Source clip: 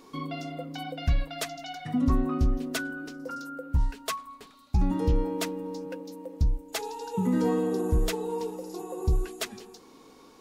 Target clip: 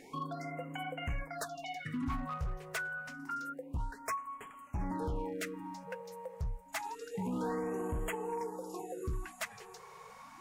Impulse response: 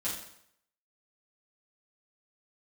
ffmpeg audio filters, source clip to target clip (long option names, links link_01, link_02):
-af "equalizer=frequency=125:width_type=o:width=1:gain=7,equalizer=frequency=500:width_type=o:width=1:gain=3,equalizer=frequency=1000:width_type=o:width=1:gain=9,equalizer=frequency=2000:width_type=o:width=1:gain=12,equalizer=frequency=4000:width_type=o:width=1:gain=-4,equalizer=frequency=8000:width_type=o:width=1:gain=5,acompressor=threshold=-42dB:ratio=1.5,asoftclip=type=hard:threshold=-26dB,highshelf=frequency=8500:gain=3.5,afftfilt=real='re*(1-between(b*sr/1024,250*pow(4800/250,0.5+0.5*sin(2*PI*0.28*pts/sr))/1.41,250*pow(4800/250,0.5+0.5*sin(2*PI*0.28*pts/sr))*1.41))':imag='im*(1-between(b*sr/1024,250*pow(4800/250,0.5+0.5*sin(2*PI*0.28*pts/sr))/1.41,250*pow(4800/250,0.5+0.5*sin(2*PI*0.28*pts/sr))*1.41))':win_size=1024:overlap=0.75,volume=-5dB"